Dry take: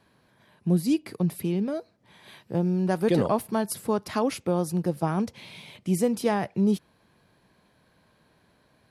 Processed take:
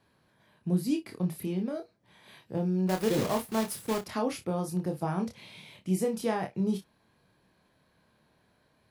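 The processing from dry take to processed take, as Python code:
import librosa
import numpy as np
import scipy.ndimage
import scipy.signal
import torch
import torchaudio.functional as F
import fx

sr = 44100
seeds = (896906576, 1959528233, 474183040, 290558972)

y = fx.block_float(x, sr, bits=3, at=(2.89, 4.07))
y = fx.room_early_taps(y, sr, ms=(27, 58), db=(-4.5, -16.0))
y = F.gain(torch.from_numpy(y), -6.0).numpy()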